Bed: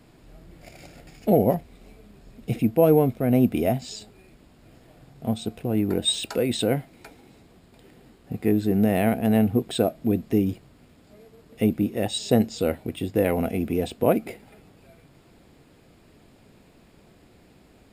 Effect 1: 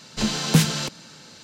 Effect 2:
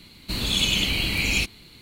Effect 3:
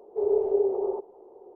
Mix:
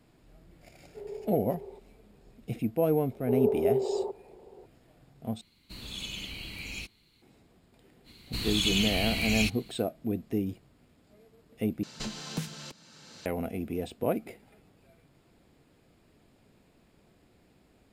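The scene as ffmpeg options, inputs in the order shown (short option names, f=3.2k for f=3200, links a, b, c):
-filter_complex "[3:a]asplit=2[a][b];[2:a]asplit=2[c][d];[0:a]volume=-8.5dB[e];[d]equalizer=f=550:t=o:w=1.1:g=-8[f];[1:a]acompressor=threshold=-42dB:ratio=2.5:attack=99:release=703:knee=1:detection=peak[g];[e]asplit=3[h][i][j];[h]atrim=end=5.414[k];[c]atrim=end=1.81,asetpts=PTS-STARTPTS,volume=-16.5dB[l];[i]atrim=start=7.216:end=11.834[m];[g]atrim=end=1.43,asetpts=PTS-STARTPTS,volume=-3dB[n];[j]atrim=start=13.256[o];[a]atrim=end=1.55,asetpts=PTS-STARTPTS,volume=-17dB,afade=t=in:d=0.004:c=hsin,afade=t=out:st=1.546:d=0.004:c=hsin,adelay=790[p];[b]atrim=end=1.55,asetpts=PTS-STARTPTS,volume=-2.5dB,afade=t=in:d=0.004:c=hsin,afade=t=out:st=1.546:d=0.004:c=hsin,adelay=3110[q];[f]atrim=end=1.81,asetpts=PTS-STARTPTS,volume=-5.5dB,afade=t=in:d=0.05,afade=t=out:st=1.76:d=0.05,adelay=8040[r];[k][l]acrossfade=d=0.004:c1=hsin:c2=hsin[s];[s][m]acrossfade=d=0.004:c1=hsin:c2=hsin[t];[t][n]acrossfade=d=0.004:c1=hsin:c2=hsin[u];[u][o]acrossfade=d=0.004:c1=hsin:c2=hsin[v];[v][p][q][r]amix=inputs=4:normalize=0"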